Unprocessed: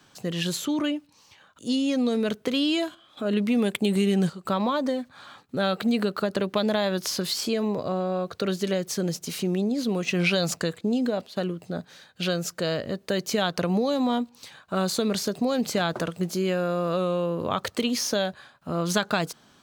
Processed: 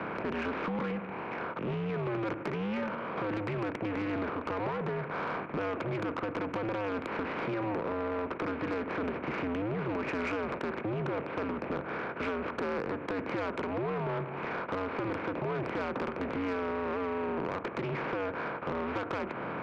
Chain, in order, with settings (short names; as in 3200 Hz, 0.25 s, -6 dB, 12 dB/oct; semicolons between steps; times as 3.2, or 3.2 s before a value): per-bin compression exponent 0.4; mistuned SSB -100 Hz 290–2200 Hz; compressor 4:1, threshold -25 dBFS, peak gain reduction 9 dB; soft clip -25 dBFS, distortion -13 dB; Doppler distortion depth 0.13 ms; gain -2.5 dB